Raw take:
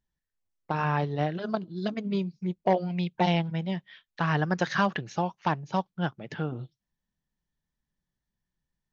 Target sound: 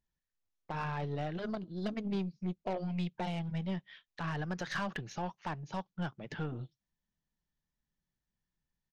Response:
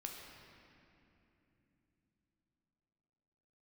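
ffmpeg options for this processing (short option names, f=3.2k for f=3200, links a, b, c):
-af "alimiter=limit=-19.5dB:level=0:latency=1:release=93,aresample=16000,aresample=44100,aeval=exprs='0.112*(cos(1*acos(clip(val(0)/0.112,-1,1)))-cos(1*PI/2))+0.00631*(cos(4*acos(clip(val(0)/0.112,-1,1)))-cos(4*PI/2))+0.00891*(cos(5*acos(clip(val(0)/0.112,-1,1)))-cos(5*PI/2))+0.00224*(cos(8*acos(clip(val(0)/0.112,-1,1)))-cos(8*PI/2))':c=same,volume=-6.5dB"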